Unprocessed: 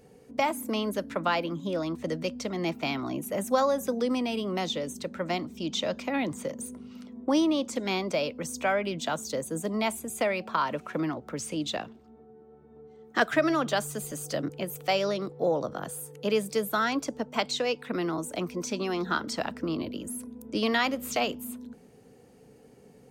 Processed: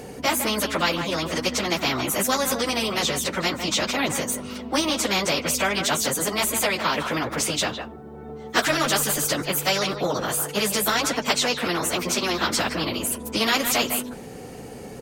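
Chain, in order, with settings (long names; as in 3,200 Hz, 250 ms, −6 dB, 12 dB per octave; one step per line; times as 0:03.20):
far-end echo of a speakerphone 240 ms, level −15 dB
time stretch by phase vocoder 0.65×
every bin compressed towards the loudest bin 2 to 1
level +7.5 dB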